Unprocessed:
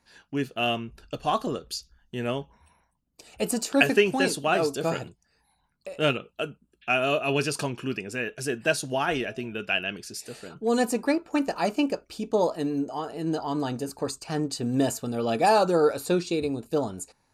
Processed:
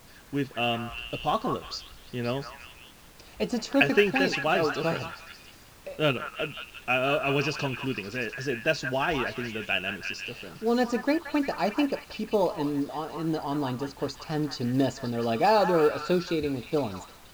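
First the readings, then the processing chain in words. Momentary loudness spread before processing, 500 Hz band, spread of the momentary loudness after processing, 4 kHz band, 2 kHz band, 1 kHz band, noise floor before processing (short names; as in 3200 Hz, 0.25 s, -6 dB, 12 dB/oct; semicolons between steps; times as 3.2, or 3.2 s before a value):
12 LU, -1.0 dB, 12 LU, -0.5 dB, 0.0 dB, -0.5 dB, -71 dBFS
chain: steep low-pass 6000 Hz 36 dB/oct; low shelf 63 Hz +11.5 dB; added noise pink -51 dBFS; short-mantissa float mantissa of 4-bit; delay with a stepping band-pass 0.175 s, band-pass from 1300 Hz, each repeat 0.7 oct, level -3 dB; gain -1.5 dB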